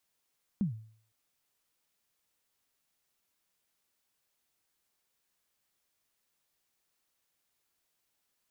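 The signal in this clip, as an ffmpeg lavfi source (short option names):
-f lavfi -i "aevalsrc='0.0668*pow(10,-3*t/0.53)*sin(2*PI*(220*0.12/log(110/220)*(exp(log(110/220)*min(t,0.12)/0.12)-1)+110*max(t-0.12,0)))':d=0.51:s=44100"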